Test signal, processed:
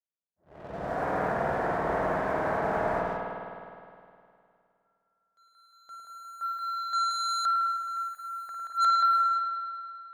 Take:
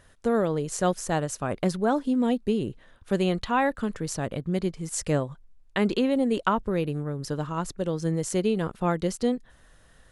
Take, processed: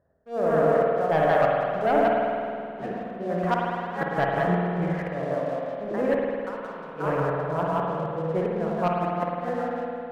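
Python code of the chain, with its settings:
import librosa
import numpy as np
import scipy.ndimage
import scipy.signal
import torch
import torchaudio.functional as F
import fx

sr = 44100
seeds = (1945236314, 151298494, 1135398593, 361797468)

p1 = x + fx.echo_split(x, sr, split_hz=620.0, low_ms=106, high_ms=178, feedback_pct=52, wet_db=-4.0, dry=0)
p2 = fx.auto_swell(p1, sr, attack_ms=630.0)
p3 = 10.0 ** (-25.0 / 20.0) * np.tanh(p2 / 10.0 ** (-25.0 / 20.0))
p4 = p2 + (p3 * 10.0 ** (-9.0 / 20.0))
p5 = fx.env_lowpass(p4, sr, base_hz=430.0, full_db=-18.0)
p6 = fx.low_shelf(p5, sr, hz=480.0, db=-5.0)
p7 = fx.gate_flip(p6, sr, shuts_db=-19.0, range_db=-25)
p8 = fx.cabinet(p7, sr, low_hz=100.0, low_slope=12, high_hz=2000.0, hz=(110.0, 240.0, 370.0, 670.0, 1700.0), db=(-9, -8, -3, 7, 5))
p9 = fx.leveller(p8, sr, passes=2)
y = fx.rev_spring(p9, sr, rt60_s=2.4, pass_ms=(51,), chirp_ms=60, drr_db=-1.5)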